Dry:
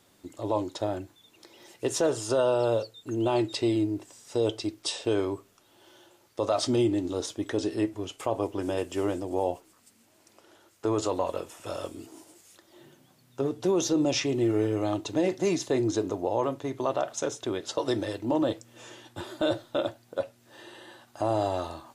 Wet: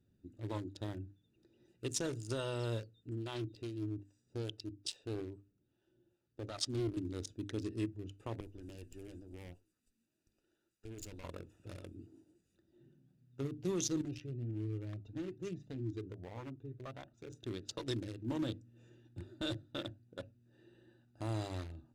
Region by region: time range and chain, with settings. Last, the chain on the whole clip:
3.09–6.97 s: harmonic tremolo 2.4 Hz, crossover 570 Hz + loudspeaker Doppler distortion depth 0.42 ms
8.40–11.24 s: tilt EQ +3 dB/octave + valve stage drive 31 dB, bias 0.65
14.01–17.30 s: treble shelf 5.4 kHz -11.5 dB + Shepard-style flanger rising 1.6 Hz
whole clip: local Wiener filter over 41 samples; amplifier tone stack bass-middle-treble 6-0-2; hum notches 50/100/150/200/250/300 Hz; trim +12.5 dB

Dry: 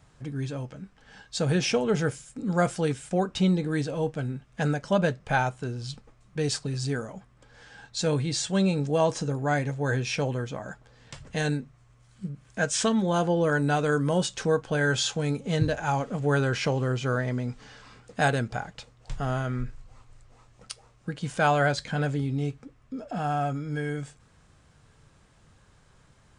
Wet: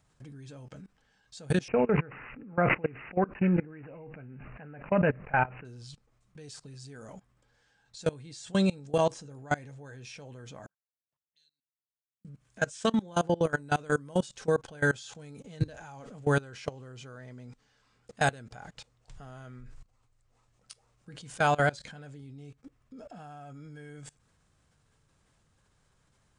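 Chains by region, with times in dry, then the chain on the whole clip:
1.68–5.65 s: peaking EQ 69 Hz -5.5 dB 1.3 oct + careless resampling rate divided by 8×, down none, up filtered + decay stretcher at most 25 dB/s
10.66–12.25 s: high-pass 50 Hz + amplifier tone stack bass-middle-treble 10-0-1 + auto-wah 510–4200 Hz, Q 7.5, up, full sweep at -45 dBFS
whole clip: treble shelf 6 kHz +6 dB; level held to a coarse grid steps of 23 dB

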